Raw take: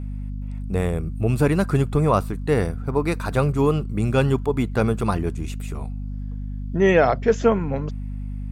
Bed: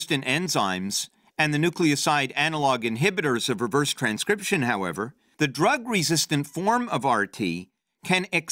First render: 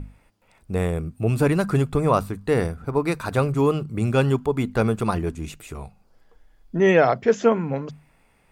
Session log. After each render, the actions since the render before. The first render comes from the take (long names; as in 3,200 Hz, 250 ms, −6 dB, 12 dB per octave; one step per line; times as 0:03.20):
mains-hum notches 50/100/150/200/250 Hz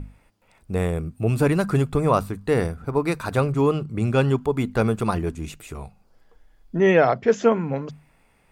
0:03.40–0:04.41: high-shelf EQ 10,000 Hz −9 dB
0:06.80–0:07.29: high-frequency loss of the air 53 metres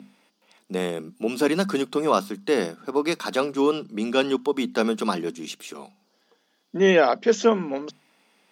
Chebyshev high-pass filter 190 Hz, order 5
flat-topped bell 4,300 Hz +8.5 dB 1.3 octaves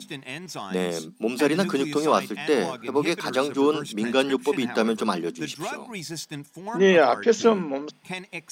mix in bed −11.5 dB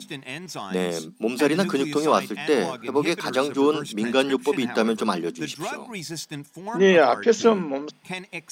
level +1 dB